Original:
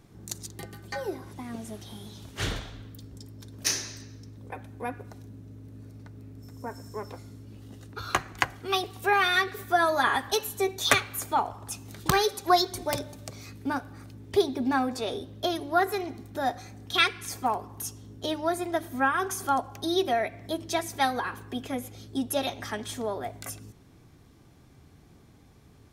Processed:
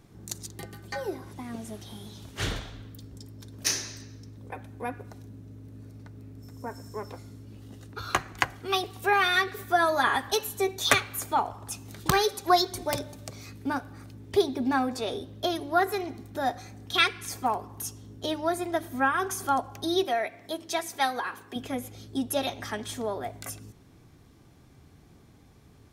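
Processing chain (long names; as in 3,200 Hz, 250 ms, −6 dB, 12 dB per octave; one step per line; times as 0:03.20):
0:20.04–0:21.56: high-pass filter 420 Hz 6 dB per octave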